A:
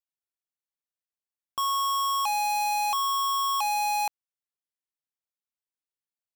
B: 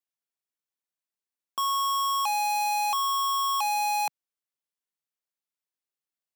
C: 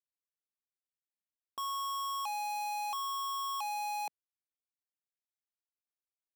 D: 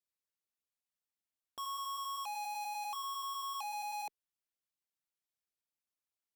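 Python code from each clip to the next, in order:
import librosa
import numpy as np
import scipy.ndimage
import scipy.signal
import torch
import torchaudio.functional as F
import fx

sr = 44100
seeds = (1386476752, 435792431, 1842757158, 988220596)

y1 = scipy.signal.sosfilt(scipy.signal.butter(4, 150.0, 'highpass', fs=sr, output='sos'), x)
y2 = fx.wiener(y1, sr, points=41)
y2 = fx.leveller(y2, sr, passes=2)
y2 = y2 * librosa.db_to_amplitude(-8.5)
y3 = fx.filter_lfo_notch(y2, sr, shape='sine', hz=5.1, low_hz=360.0, high_hz=1900.0, q=2.8)
y3 = fx.cheby_harmonics(y3, sr, harmonics=(5,), levels_db=(-20,), full_scale_db=-30.5)
y3 = y3 * librosa.db_to_amplitude(-3.5)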